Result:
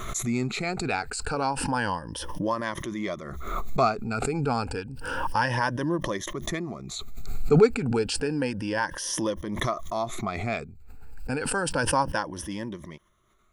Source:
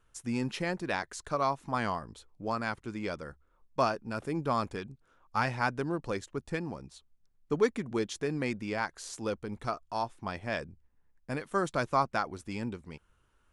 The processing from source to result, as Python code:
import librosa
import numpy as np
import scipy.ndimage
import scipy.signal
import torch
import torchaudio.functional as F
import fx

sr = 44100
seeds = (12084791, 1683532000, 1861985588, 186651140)

y = fx.spec_ripple(x, sr, per_octave=1.2, drift_hz=0.3, depth_db=15)
y = fx.pre_swell(y, sr, db_per_s=33.0)
y = F.gain(torch.from_numpy(y), 1.5).numpy()